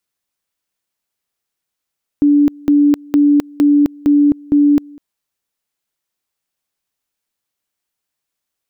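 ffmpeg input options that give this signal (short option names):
-f lavfi -i "aevalsrc='pow(10,(-7-26.5*gte(mod(t,0.46),0.26))/20)*sin(2*PI*290*t)':d=2.76:s=44100"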